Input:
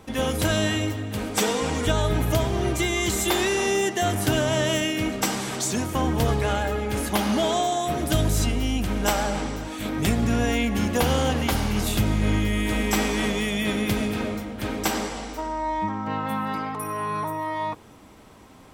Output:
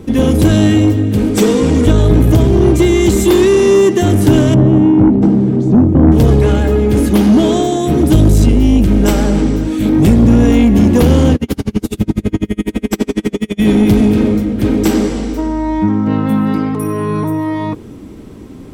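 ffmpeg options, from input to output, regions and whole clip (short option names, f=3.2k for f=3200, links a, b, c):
-filter_complex "[0:a]asettb=1/sr,asplit=3[a][b][c];[a]atrim=end=4.544[d];[b]atrim=start=4.54:end=6.12,asetpts=PTS-STARTPTS,afade=t=in:d=0.004:c=qsin,afade=t=out:st=1.576:d=0.004:c=qsin,bandpass=f=230:t=q:w=0.63,lowshelf=f=190:g=10[e];[c]atrim=start=6.116[f];[d][e]acrossfade=d=0.004:c1=hsin:c2=qsin[g];[g][f]acrossfade=d=0.004:c1=qsin:c2=hsin,asettb=1/sr,asplit=3[h][i][j];[h]atrim=end=11.354[k];[i]atrim=start=11.35:end=13.6,asetpts=PTS-STARTPTS,afade=t=in:d=0.004:c=qsin,afade=t=out:st=2.246:d=0.004:c=qsin,highpass=f=150:p=1,aecho=1:1:313:0.188,atrim=end_sample=99225,aeval=exprs='val(0)*pow(10,-39*(0.5-0.5*cos(2*PI*12*n/s))/20)':c=same[l];[j]atrim=start=13.596[m];[k][l]acrossfade=d=0.004:c1=hsin:c2=qsin[n];[n][m]acrossfade=d=0.004:c1=qsin:c2=hsin,lowshelf=f=520:t=q:w=1.5:g=11.5,acontrast=72,volume=-1dB"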